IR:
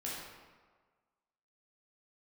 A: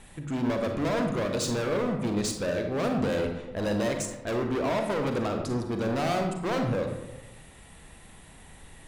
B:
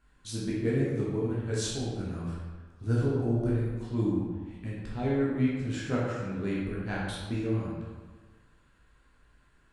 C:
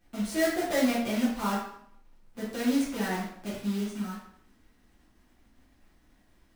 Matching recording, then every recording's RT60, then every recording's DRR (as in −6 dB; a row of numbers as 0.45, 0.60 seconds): B; 1.0, 1.5, 0.65 seconds; 4.0, −6.5, −8.5 decibels